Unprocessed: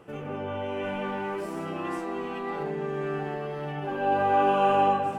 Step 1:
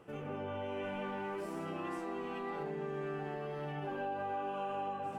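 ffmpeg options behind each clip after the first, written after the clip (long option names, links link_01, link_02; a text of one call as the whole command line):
ffmpeg -i in.wav -af "acompressor=threshold=-29dB:ratio=10,volume=-6dB" out.wav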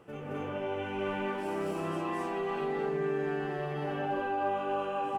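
ffmpeg -i in.wav -af "aecho=1:1:218.7|262.4:1|1,volume=1.5dB" out.wav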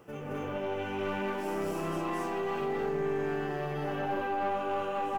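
ffmpeg -i in.wav -af "aexciter=amount=1.6:drive=5.9:freq=5200,aeval=exprs='(tanh(20*val(0)+0.4)-tanh(0.4))/20':channel_layout=same,volume=2.5dB" out.wav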